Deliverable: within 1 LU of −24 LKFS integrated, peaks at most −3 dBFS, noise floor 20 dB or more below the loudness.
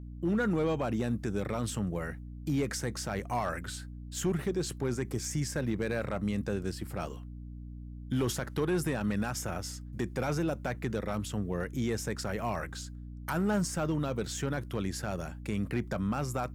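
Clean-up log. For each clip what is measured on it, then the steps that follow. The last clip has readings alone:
share of clipped samples 0.8%; peaks flattened at −23.0 dBFS; mains hum 60 Hz; hum harmonics up to 300 Hz; level of the hum −41 dBFS; integrated loudness −33.5 LKFS; sample peak −23.0 dBFS; target loudness −24.0 LKFS
→ clipped peaks rebuilt −23 dBFS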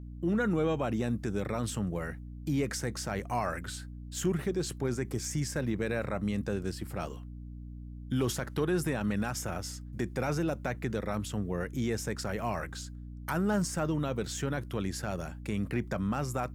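share of clipped samples 0.0%; mains hum 60 Hz; hum harmonics up to 300 Hz; level of the hum −41 dBFS
→ hum removal 60 Hz, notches 5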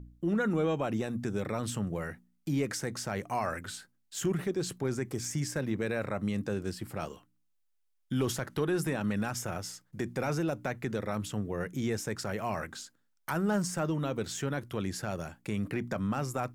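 mains hum none found; integrated loudness −33.5 LKFS; sample peak −19.0 dBFS; target loudness −24.0 LKFS
→ level +9.5 dB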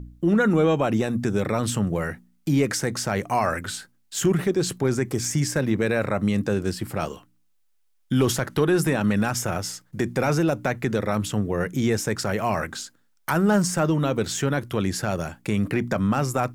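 integrated loudness −24.0 LKFS; sample peak −9.5 dBFS; background noise floor −64 dBFS

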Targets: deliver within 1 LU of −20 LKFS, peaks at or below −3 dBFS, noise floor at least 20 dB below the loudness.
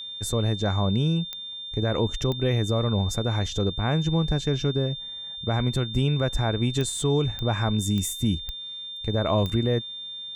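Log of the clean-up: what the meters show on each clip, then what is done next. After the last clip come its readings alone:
number of clicks 7; interfering tone 3,600 Hz; level of the tone −34 dBFS; integrated loudness −25.5 LKFS; sample peak −11.5 dBFS; target loudness −20.0 LKFS
→ click removal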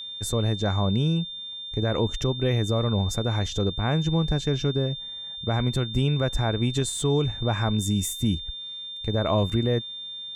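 number of clicks 0; interfering tone 3,600 Hz; level of the tone −34 dBFS
→ notch filter 3,600 Hz, Q 30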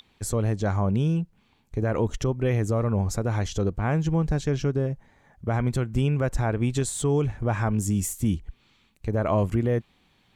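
interfering tone none found; integrated loudness −26.0 LKFS; sample peak −13.0 dBFS; target loudness −20.0 LKFS
→ level +6 dB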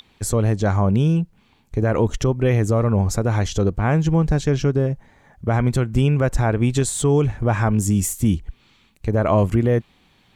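integrated loudness −20.0 LKFS; sample peak −7.0 dBFS; background noise floor −58 dBFS

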